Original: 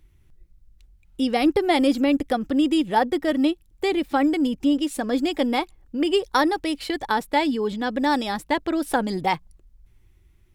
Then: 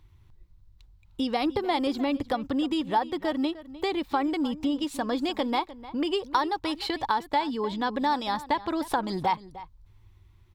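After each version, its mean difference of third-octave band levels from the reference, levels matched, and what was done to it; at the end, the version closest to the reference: 4.0 dB: fifteen-band EQ 100 Hz +11 dB, 1000 Hz +12 dB, 4000 Hz +7 dB, 10000 Hz -5 dB; compressor 2.5:1, threshold -23 dBFS, peak gain reduction 11.5 dB; outdoor echo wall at 52 m, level -16 dB; gain -3 dB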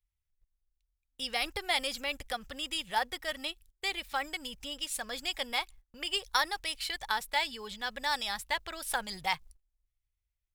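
8.5 dB: gate -43 dBFS, range -23 dB; passive tone stack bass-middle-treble 10-0-10; in parallel at -6 dB: short-mantissa float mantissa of 2-bit; on the sum: gain -3 dB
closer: first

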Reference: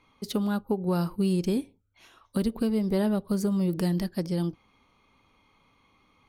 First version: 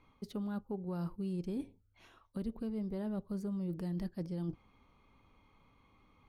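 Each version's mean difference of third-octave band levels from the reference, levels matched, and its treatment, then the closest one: 3.5 dB: high shelf 2900 Hz -9 dB; reverse; compressor 5:1, threshold -35 dBFS, peak gain reduction 12.5 dB; reverse; low shelf 110 Hz +8 dB; gain -3 dB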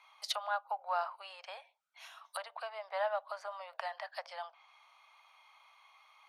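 14.0 dB: treble ducked by the level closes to 2000 Hz, closed at -24.5 dBFS; steep high-pass 630 Hz 72 dB/oct; bell 7400 Hz -2.5 dB 0.51 oct; gain +3.5 dB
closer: first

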